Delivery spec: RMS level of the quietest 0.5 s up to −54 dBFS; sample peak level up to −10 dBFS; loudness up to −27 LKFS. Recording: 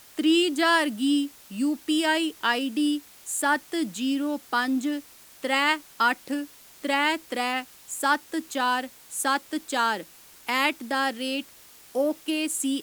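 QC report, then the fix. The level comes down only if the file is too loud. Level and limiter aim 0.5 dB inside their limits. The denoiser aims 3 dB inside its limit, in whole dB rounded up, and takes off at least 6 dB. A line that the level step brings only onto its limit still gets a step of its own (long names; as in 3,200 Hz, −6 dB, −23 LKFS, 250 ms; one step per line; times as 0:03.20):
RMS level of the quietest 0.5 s −51 dBFS: out of spec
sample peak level −8.0 dBFS: out of spec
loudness −26.0 LKFS: out of spec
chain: broadband denoise 6 dB, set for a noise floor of −51 dBFS
level −1.5 dB
brickwall limiter −10.5 dBFS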